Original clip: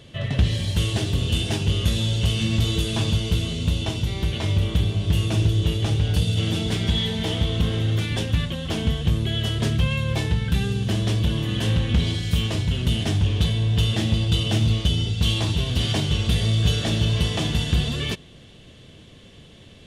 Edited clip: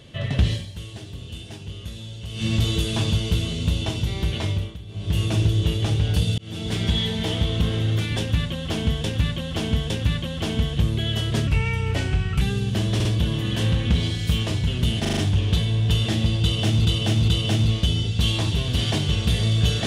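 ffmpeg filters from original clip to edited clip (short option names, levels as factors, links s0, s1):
-filter_complex "[0:a]asplit=18[s0][s1][s2][s3][s4][s5][s6][s7][s8][s9][s10][s11][s12][s13][s14][s15][s16][s17];[s0]atrim=end=0.73,asetpts=PTS-STARTPTS,afade=t=out:st=0.52:d=0.21:c=qua:silence=0.211349[s18];[s1]atrim=start=0.73:end=2.26,asetpts=PTS-STARTPTS,volume=0.211[s19];[s2]atrim=start=2.26:end=4.77,asetpts=PTS-STARTPTS,afade=t=in:d=0.21:c=qua:silence=0.211349,afade=t=out:st=2.16:d=0.35:silence=0.133352[s20];[s3]atrim=start=4.77:end=4.87,asetpts=PTS-STARTPTS,volume=0.133[s21];[s4]atrim=start=4.87:end=6.38,asetpts=PTS-STARTPTS,afade=t=in:d=0.35:silence=0.133352,afade=t=out:st=1.506:d=0.004:c=hsin[s22];[s5]atrim=start=6.38:end=9.042,asetpts=PTS-STARTPTS,afade=t=in:d=0.42[s23];[s6]atrim=start=8.178:end=9.042[s24];[s7]atrim=start=8.178:end=9.754[s25];[s8]atrim=start=9.75:end=10.55,asetpts=PTS-STARTPTS,asetrate=37485,aresample=44100[s26];[s9]atrim=start=10.546:end=11.142[s27];[s10]atrim=start=11.088:end=11.142[s28];[s11]atrim=start=11.088:end=13.092[s29];[s12]atrim=start=13.048:end=13.092[s30];[s13]atrim=start=13.048:end=13.092[s31];[s14]atrim=start=13.048:end=13.092[s32];[s15]atrim=start=13.048:end=14.732[s33];[s16]atrim=start=14.298:end=14.732[s34];[s17]atrim=start=14.298[s35];[s18][s19][s20][s21][s22][s23]concat=n=6:v=0:a=1[s36];[s36][s24]acrossfade=d=0.004:c1=hsin:c2=hsin[s37];[s37][s25]acrossfade=d=0.004:c1=hsin:c2=hsin[s38];[s38][s26]acrossfade=d=0.004:c1=hsin:c2=hsin[s39];[s39][s27]acrossfade=d=0.004:c1=hsin:c2=hsin[s40];[s40][s28]acrossfade=d=0.004:c1=hsin:c2=hsin[s41];[s41][s29]acrossfade=d=0.004:c1=hsin:c2=hsin[s42];[s42][s30]acrossfade=d=0.004:c1=hsin:c2=hsin[s43];[s43][s31]acrossfade=d=0.004:c1=hsin:c2=hsin[s44];[s44][s32]acrossfade=d=0.004:c1=hsin:c2=hsin[s45];[s45][s33]acrossfade=d=0.004:c1=hsin:c2=hsin[s46];[s46][s34]acrossfade=d=0.004:c1=hsin:c2=hsin[s47];[s47][s35]acrossfade=d=0.004:c1=hsin:c2=hsin"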